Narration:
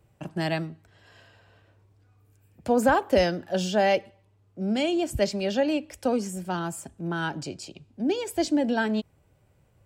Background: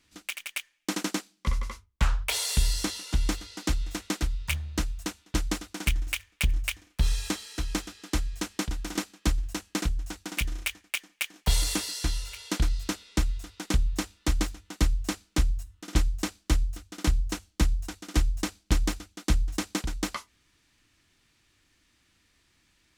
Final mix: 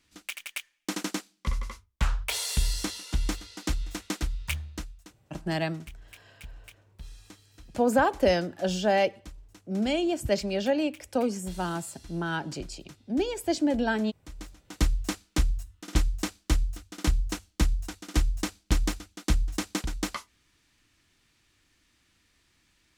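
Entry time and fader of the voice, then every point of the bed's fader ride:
5.10 s, -1.5 dB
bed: 4.59 s -2 dB
5.14 s -20 dB
14.29 s -20 dB
14.76 s -0.5 dB

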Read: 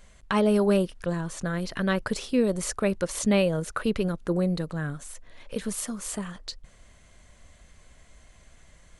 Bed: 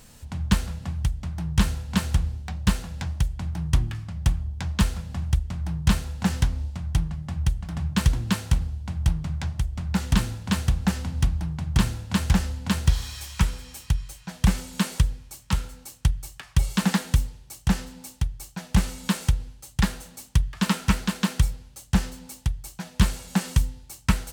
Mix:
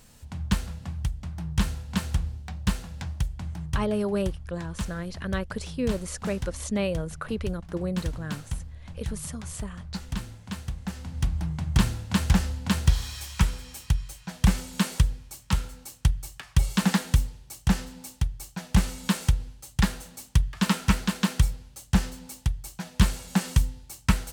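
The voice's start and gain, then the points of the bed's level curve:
3.45 s, -5.0 dB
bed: 3.43 s -4 dB
4.07 s -11 dB
10.86 s -11 dB
11.43 s -0.5 dB

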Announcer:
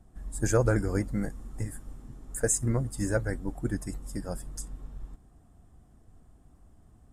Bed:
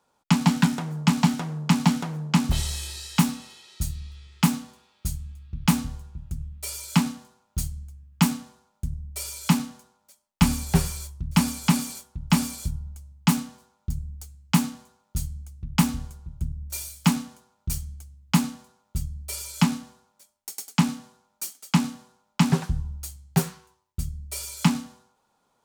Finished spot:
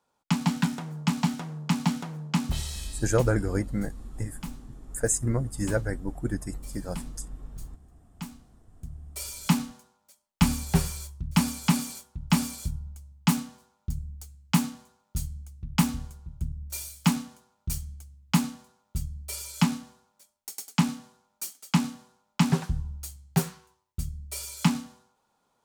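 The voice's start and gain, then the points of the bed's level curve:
2.60 s, +1.0 dB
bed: 2.82 s -5.5 dB
3.34 s -18.5 dB
8.44 s -18.5 dB
9.23 s -2.5 dB

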